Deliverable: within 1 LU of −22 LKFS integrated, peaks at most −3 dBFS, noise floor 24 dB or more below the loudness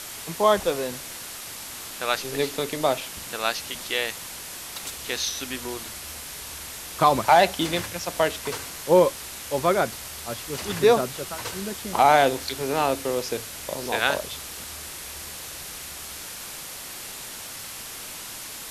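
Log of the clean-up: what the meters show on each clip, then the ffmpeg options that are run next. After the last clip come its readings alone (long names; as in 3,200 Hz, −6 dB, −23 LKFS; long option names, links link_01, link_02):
background noise floor −38 dBFS; target noise floor −50 dBFS; integrated loudness −26.0 LKFS; sample peak −4.5 dBFS; target loudness −22.0 LKFS
→ -af "afftdn=noise_reduction=12:noise_floor=-38"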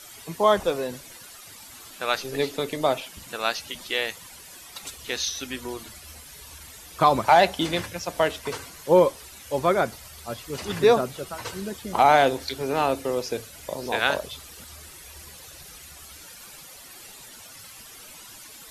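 background noise floor −45 dBFS; target noise floor −49 dBFS
→ -af "afftdn=noise_reduction=6:noise_floor=-45"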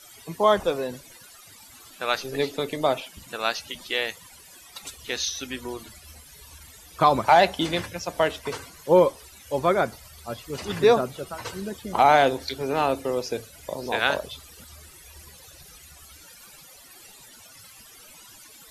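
background noise floor −49 dBFS; integrated loudness −24.5 LKFS; sample peak −4.5 dBFS; target loudness −22.0 LKFS
→ -af "volume=2.5dB,alimiter=limit=-3dB:level=0:latency=1"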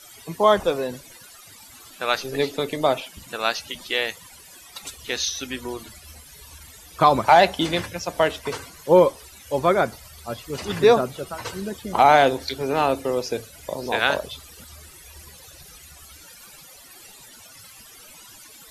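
integrated loudness −22.0 LKFS; sample peak −3.0 dBFS; background noise floor −47 dBFS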